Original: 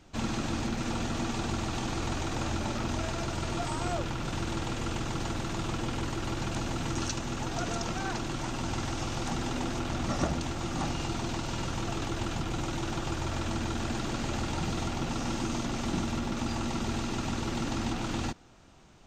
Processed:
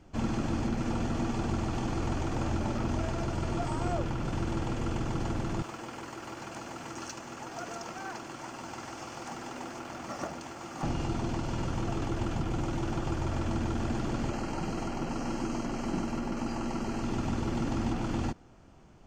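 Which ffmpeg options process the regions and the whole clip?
ffmpeg -i in.wav -filter_complex "[0:a]asettb=1/sr,asplit=3[link_01][link_02][link_03];[link_01]atrim=end=5.624[link_04];[link_02]atrim=start=5.62:end=10.83,asetpts=PTS-STARTPTS,afade=type=in:duration=0.004:curve=qsin,afade=type=out:start_time=5.206:duration=0.004:curve=qsin,highpass=frequency=890:poles=1,equalizer=frequency=3400:width=2.2:gain=-3.5,acrusher=bits=6:mode=log:mix=0:aa=0.000001[link_05];[link_03]atrim=start=10.826[link_06];[link_04][link_05]acrossfade=duration=0.004:curve1=hsin:curve2=qsin[link_07];[link_07][link_06]acrossfade=duration=0.004:curve1=qsin:curve2=hsin,asettb=1/sr,asplit=3[link_08][link_09][link_10];[link_08]atrim=end=14.304[link_11];[link_09]atrim=start=14.3:end=17.03,asetpts=PTS-STARTPTS,afade=type=in:duration=0.004:curve=qsin,afade=type=out:start_time=2.726:duration=0.004:curve=qsin,asuperstop=centerf=3500:order=12:qfactor=7.8,equalizer=frequency=74:width=0.8:gain=-11.5[link_12];[link_10]atrim=start=17.026[link_13];[link_11][link_12]acrossfade=duration=0.004:curve1=hsin:curve2=qsin[link_14];[link_14][link_13]acrossfade=duration=0.004:curve1=qsin:curve2=hsin,tiltshelf=frequency=1400:gain=4.5,bandreject=frequency=3800:width=8.1,volume=-2.5dB" out.wav

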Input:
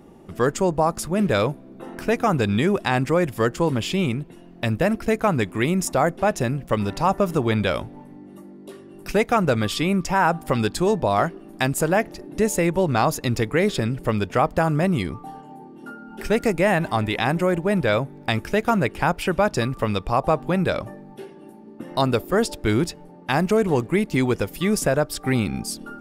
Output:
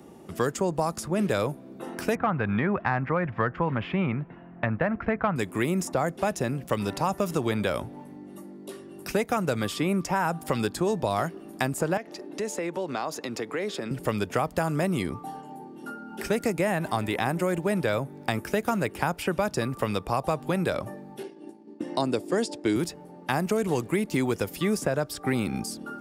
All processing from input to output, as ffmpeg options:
ffmpeg -i in.wav -filter_complex "[0:a]asettb=1/sr,asplit=3[link_01][link_02][link_03];[link_01]atrim=end=2.154[link_04];[link_02]atrim=start=2.15:end=5.36,asetpts=PTS-STARTPTS,afade=type=in:duration=0.004:curve=qsin,afade=type=out:start_time=3.206:duration=0.004:curve=qsin,lowpass=frequency=1900:width=0.5412,lowpass=frequency=1900:width=1.3066,equalizer=frequency=360:width_type=o:width=1.6:gain=-11.5,acontrast=78[link_05];[link_03]atrim=start=5.356[link_06];[link_04][link_05]acrossfade=duration=0.004:curve1=hsin:curve2=qsin[link_07];[link_07][link_06]acrossfade=duration=0.004:curve1=qsin:curve2=hsin,asettb=1/sr,asplit=3[link_08][link_09][link_10];[link_08]atrim=end=11.974[link_11];[link_09]atrim=start=11.97:end=13.91,asetpts=PTS-STARTPTS,afade=type=in:duration=0.004:curve=qsin,afade=type=out:start_time=1.936:duration=0.004:curve=qsin,acrossover=split=210 6700:gain=0.112 1 0.251[link_12][link_13][link_14];[link_12][link_13][link_14]amix=inputs=3:normalize=0,acompressor=threshold=-29dB:ratio=2.5:attack=3.2:release=140:knee=1:detection=peak[link_15];[link_10]atrim=start=13.906[link_16];[link_11][link_15]acrossfade=duration=0.004:curve1=hsin:curve2=qsin[link_17];[link_17][link_16]acrossfade=duration=0.004:curve1=qsin:curve2=hsin,asettb=1/sr,asplit=3[link_18][link_19][link_20];[link_18]atrim=end=21.234[link_21];[link_19]atrim=start=21.23:end=22.76,asetpts=PTS-STARTPTS,afade=type=in:duration=0.004:curve=qsin,afade=type=out:start_time=1.526:duration=0.004:curve=qsin,highpass=170,equalizer=frequency=310:width_type=q:width=4:gain=8,equalizer=frequency=1300:width_type=q:width=4:gain=-7,equalizer=frequency=4800:width_type=q:width=4:gain=3,lowpass=frequency=8800:width=0.5412,lowpass=frequency=8800:width=1.3066,agate=range=-33dB:threshold=-37dB:ratio=3:release=100:detection=peak[link_22];[link_20]atrim=start=22.756[link_23];[link_21][link_22]acrossfade=duration=0.004:curve1=hsin:curve2=qsin[link_24];[link_24][link_23]acrossfade=duration=0.004:curve1=qsin:curve2=hsin,highpass=71,bass=frequency=250:gain=-2,treble=frequency=4000:gain=5,acrossover=split=190|2000|7900[link_25][link_26][link_27][link_28];[link_25]acompressor=threshold=-33dB:ratio=4[link_29];[link_26]acompressor=threshold=-24dB:ratio=4[link_30];[link_27]acompressor=threshold=-40dB:ratio=4[link_31];[link_28]acompressor=threshold=-44dB:ratio=4[link_32];[link_29][link_30][link_31][link_32]amix=inputs=4:normalize=0" out.wav

